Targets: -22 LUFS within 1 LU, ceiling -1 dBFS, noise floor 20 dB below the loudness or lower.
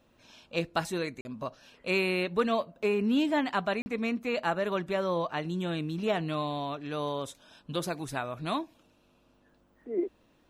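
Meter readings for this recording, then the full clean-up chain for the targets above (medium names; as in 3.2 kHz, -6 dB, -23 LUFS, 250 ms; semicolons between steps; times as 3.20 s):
dropouts 2; longest dropout 40 ms; loudness -31.5 LUFS; peak level -14.5 dBFS; loudness target -22.0 LUFS
-> interpolate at 1.21/3.82 s, 40 ms; trim +9.5 dB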